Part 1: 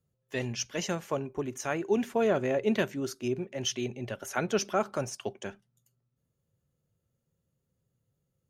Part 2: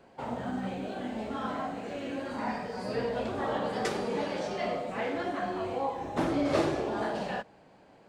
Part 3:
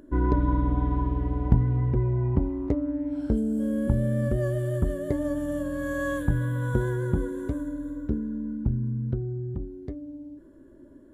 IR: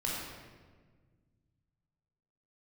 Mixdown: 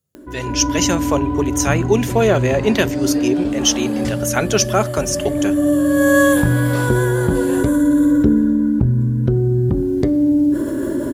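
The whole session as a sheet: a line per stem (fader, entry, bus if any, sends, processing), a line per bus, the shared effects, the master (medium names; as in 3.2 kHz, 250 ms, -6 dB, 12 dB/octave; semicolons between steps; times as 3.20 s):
+0.5 dB, 0.00 s, no send, none
1.66 s -19.5 dB -> 2.15 s -8.5 dB -> 3.97 s -8.5 dB -> 4.36 s -20 dB -> 6.09 s -20 dB -> 6.31 s -8 dB, 0.20 s, no send, comb of notches 160 Hz
0.0 dB, 0.15 s, send -18 dB, high-pass 97 Hz 6 dB/octave; level flattener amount 50%; auto duck -18 dB, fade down 0.40 s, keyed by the first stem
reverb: on, RT60 1.5 s, pre-delay 16 ms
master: treble shelf 3.9 kHz +10.5 dB; level rider gain up to 13.5 dB; bass shelf 71 Hz -6 dB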